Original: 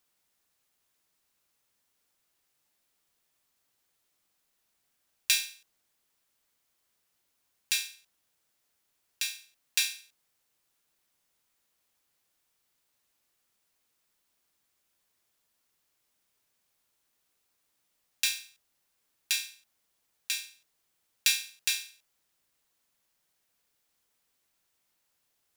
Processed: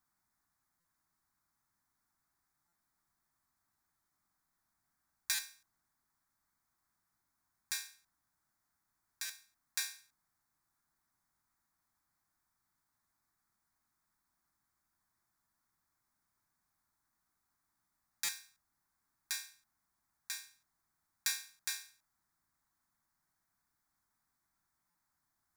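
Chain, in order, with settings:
high-shelf EQ 3,200 Hz −10 dB
phaser with its sweep stopped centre 1,200 Hz, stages 4
buffer that repeats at 0:00.80/0:02.68/0:05.34/0:09.25/0:18.24/0:24.90, samples 256, times 7
level +2 dB

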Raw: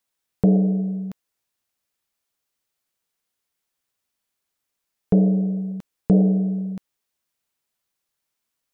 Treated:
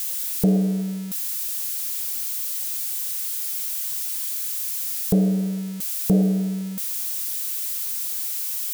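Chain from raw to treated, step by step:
spike at every zero crossing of −22 dBFS
level −2 dB

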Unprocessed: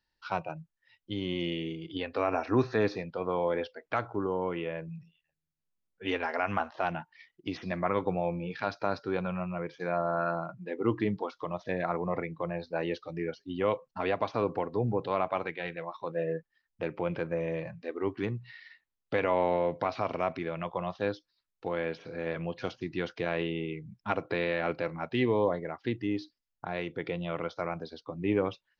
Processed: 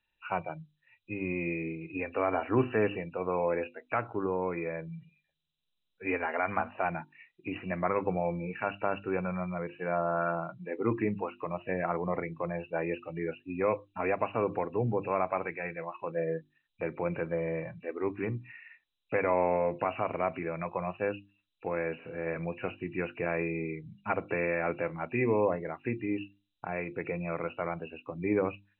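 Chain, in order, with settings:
hearing-aid frequency compression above 2,300 Hz 4 to 1
mains-hum notches 50/100/150/200/250/300/350 Hz

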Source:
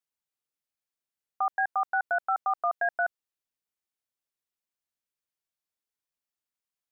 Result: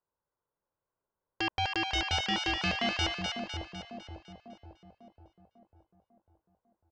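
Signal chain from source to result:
low-pass filter 1,200 Hz 24 dB per octave
comb filter 2 ms, depth 43%
sine wavefolder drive 14 dB, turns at −19 dBFS
on a send: echo with a time of its own for lows and highs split 790 Hz, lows 548 ms, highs 252 ms, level −4 dB
on the sum: level −7 dB

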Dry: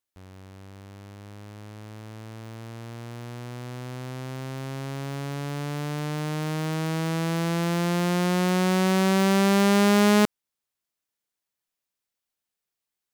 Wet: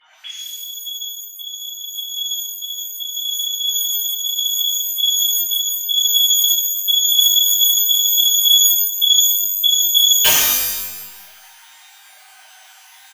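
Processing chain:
three sine waves on the formant tracks
wrap-around overflow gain 6.5 dB
downward compressor 8 to 1, threshold −27 dBFS, peak gain reduction 15 dB
comb filter 6.5 ms, depth 75%
reverb with rising layers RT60 1 s, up +12 semitones, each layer −2 dB, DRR −9.5 dB
level +5.5 dB

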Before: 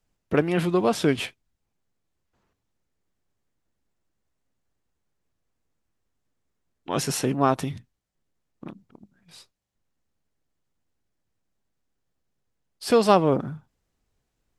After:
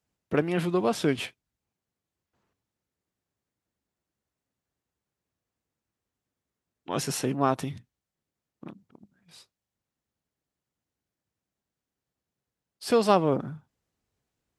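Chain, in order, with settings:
high-pass filter 67 Hz
level −3.5 dB

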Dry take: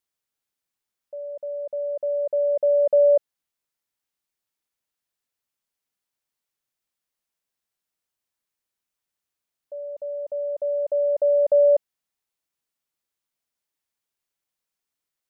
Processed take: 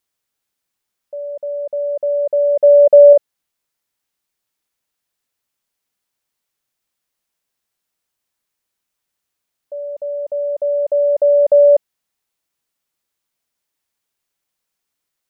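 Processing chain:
0:02.63–0:03.13: dynamic equaliser 600 Hz, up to +4 dB, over −28 dBFS, Q 2.6
level +7 dB

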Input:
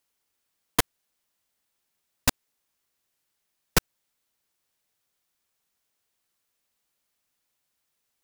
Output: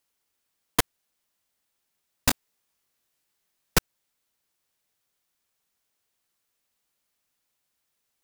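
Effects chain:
0:02.28–0:03.77: double-tracking delay 22 ms −4.5 dB

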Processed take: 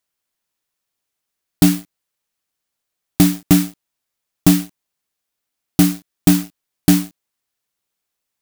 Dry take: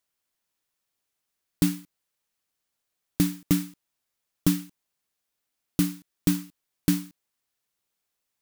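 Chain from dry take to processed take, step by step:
leveller curve on the samples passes 2
level +6 dB

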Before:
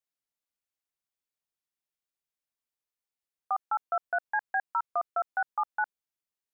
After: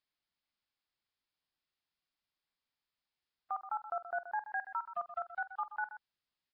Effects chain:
0:03.59–0:04.41: low-pass filter 1,300 Hz 24 dB per octave
0:04.93–0:05.72: noise gate −28 dBFS, range −40 dB
parametric band 490 Hz −12.5 dB 0.5 octaves
brickwall limiter −32 dBFS, peak gain reduction 11 dB
multi-tap delay 46/127 ms −15/−12.5 dB
level +4 dB
Nellymoser 22 kbit/s 11,025 Hz

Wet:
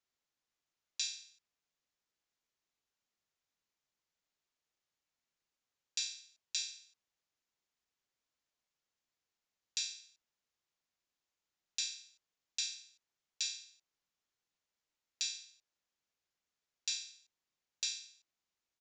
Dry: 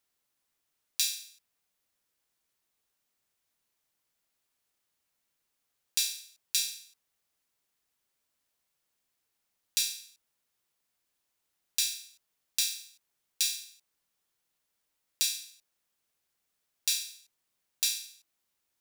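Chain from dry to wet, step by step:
downsampling to 16,000 Hz
level −7 dB

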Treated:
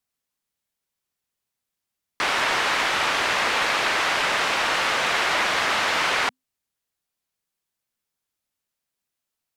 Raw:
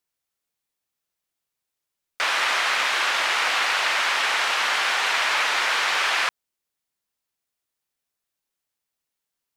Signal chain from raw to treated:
tape wow and flutter 17 cents
frequency shifter −260 Hz

